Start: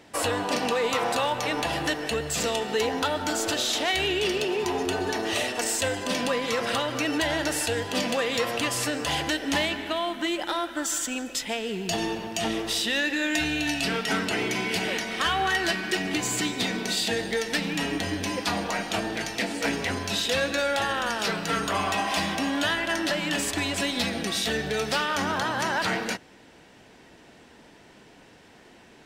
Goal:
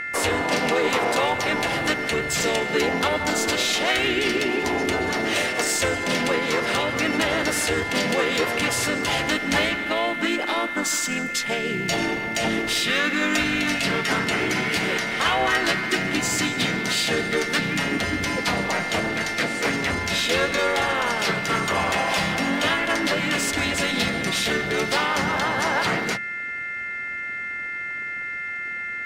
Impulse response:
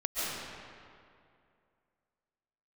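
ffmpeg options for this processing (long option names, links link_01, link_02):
-filter_complex "[0:a]bandreject=frequency=70.88:width_type=h:width=4,bandreject=frequency=141.76:width_type=h:width=4,bandreject=frequency=212.64:width_type=h:width=4,bandreject=frequency=283.52:width_type=h:width=4,bandreject=frequency=354.4:width_type=h:width=4,bandreject=frequency=425.28:width_type=h:width=4,aeval=exprs='val(0)+0.0282*sin(2*PI*2100*n/s)':channel_layout=same,asplit=4[link_01][link_02][link_03][link_04];[link_02]asetrate=29433,aresample=44100,atempo=1.49831,volume=-7dB[link_05];[link_03]asetrate=37084,aresample=44100,atempo=1.18921,volume=-5dB[link_06];[link_04]asetrate=55563,aresample=44100,atempo=0.793701,volume=-17dB[link_07];[link_01][link_05][link_06][link_07]amix=inputs=4:normalize=0,volume=1.5dB"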